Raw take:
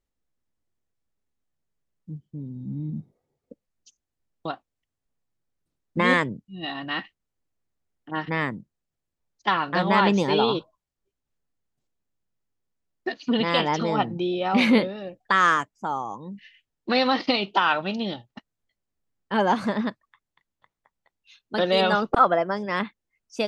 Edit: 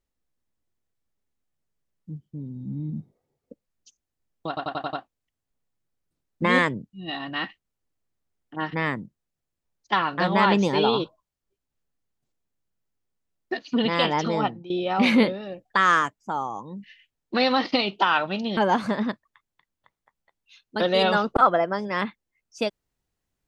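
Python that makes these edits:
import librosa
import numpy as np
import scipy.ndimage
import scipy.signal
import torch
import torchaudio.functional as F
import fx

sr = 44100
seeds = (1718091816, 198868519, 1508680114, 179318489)

y = fx.edit(x, sr, fx.stutter(start_s=4.48, slice_s=0.09, count=6),
    fx.fade_out_to(start_s=13.97, length_s=0.28, curve='qua', floor_db=-15.0),
    fx.cut(start_s=18.12, length_s=1.23), tone=tone)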